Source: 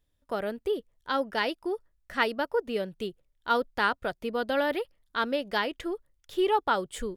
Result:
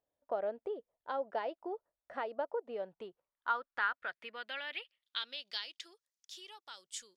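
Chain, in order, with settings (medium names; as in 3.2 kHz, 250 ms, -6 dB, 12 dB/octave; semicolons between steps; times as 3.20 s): compression 3:1, threshold -32 dBFS, peak gain reduction 9.5 dB; band-pass sweep 670 Hz -> 5.8 kHz, 2.61–6.00 s; dynamic bell 3.5 kHz, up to +4 dB, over -58 dBFS, Q 0.9; trim +3 dB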